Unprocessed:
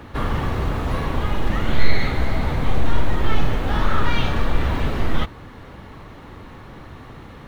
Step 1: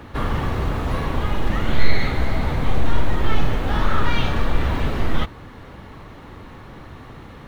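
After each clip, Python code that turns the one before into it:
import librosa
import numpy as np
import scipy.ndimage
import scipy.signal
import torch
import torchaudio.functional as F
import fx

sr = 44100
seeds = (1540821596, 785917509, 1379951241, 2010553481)

y = x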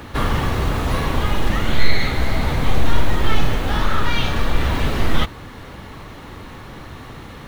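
y = fx.high_shelf(x, sr, hz=3100.0, db=8.5)
y = fx.rider(y, sr, range_db=10, speed_s=0.5)
y = y * 10.0 ** (1.5 / 20.0)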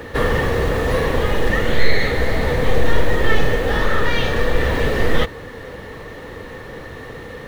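y = fx.small_body(x, sr, hz=(480.0, 1800.0), ring_ms=30, db=14)
y = y * 10.0 ** (-1.0 / 20.0)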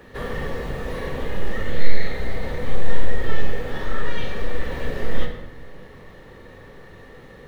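y = fx.room_shoebox(x, sr, seeds[0], volume_m3=370.0, walls='mixed', distance_m=1.1)
y = y * 10.0 ** (-13.5 / 20.0)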